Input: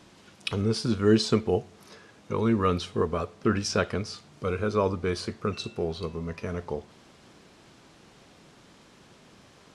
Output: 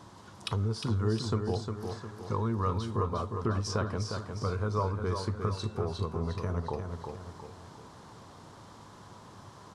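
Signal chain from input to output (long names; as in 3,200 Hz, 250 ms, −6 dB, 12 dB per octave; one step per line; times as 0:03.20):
graphic EQ with 15 bands 100 Hz +11 dB, 1,000 Hz +10 dB, 2,500 Hz −9 dB
downward compressor 2.5 to 1, threshold −32 dBFS, peak gain reduction 13.5 dB
on a send: repeating echo 356 ms, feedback 45%, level −6 dB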